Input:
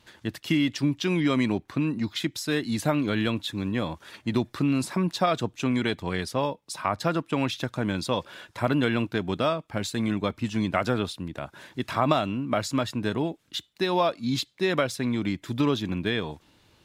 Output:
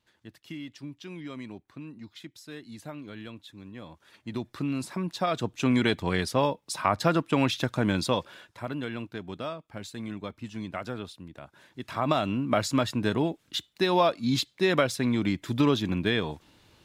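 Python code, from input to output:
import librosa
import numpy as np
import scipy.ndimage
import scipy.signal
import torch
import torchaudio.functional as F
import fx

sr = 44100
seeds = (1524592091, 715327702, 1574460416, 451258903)

y = fx.gain(x, sr, db=fx.line((3.74, -16.0), (4.58, -6.0), (5.11, -6.0), (5.72, 2.0), (8.06, 2.0), (8.6, -10.0), (11.71, -10.0), (12.33, 1.0)))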